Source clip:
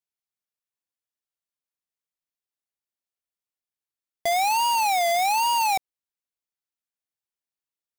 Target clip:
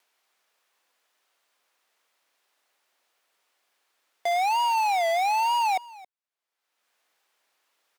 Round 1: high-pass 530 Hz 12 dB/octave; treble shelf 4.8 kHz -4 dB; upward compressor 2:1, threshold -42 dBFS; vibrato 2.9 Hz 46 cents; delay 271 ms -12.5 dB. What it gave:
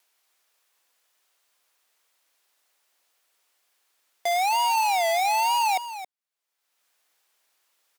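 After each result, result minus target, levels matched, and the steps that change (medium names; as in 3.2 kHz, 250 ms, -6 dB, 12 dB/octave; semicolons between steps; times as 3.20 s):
8 kHz band +6.0 dB; echo-to-direct +8.5 dB
change: treble shelf 4.8 kHz -14 dB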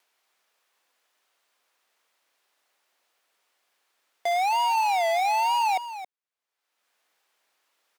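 echo-to-direct +8.5 dB
change: delay 271 ms -21 dB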